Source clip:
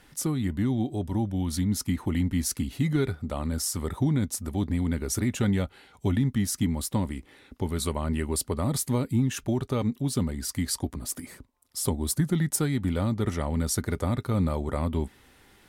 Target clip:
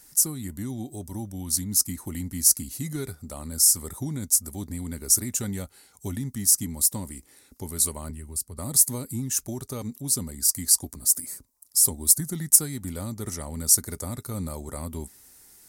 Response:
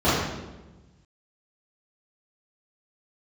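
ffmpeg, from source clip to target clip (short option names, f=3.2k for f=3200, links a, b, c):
-filter_complex "[0:a]asettb=1/sr,asplit=3[a][b][c];[a]atrim=end=8.104[d];[b]atrim=start=8.1:end=8.58,asetpts=PTS-STARTPTS,afade=t=in:d=0.004:c=qsin,afade=t=out:st=0.476:d=0.004:c=qsin,acrossover=split=160[e][f];[f]acompressor=threshold=-41dB:ratio=4[g];[e][g]amix=inputs=2:normalize=0[h];[c]atrim=start=8.576[i];[d][h]acrossfade=d=0.004:c1=hsin:c2=qsin[j];[j][i]acrossfade=d=0.004:c1=qsin:c2=hsin,aexciter=amount=7.1:drive=7.2:freq=4.8k,volume=-7dB"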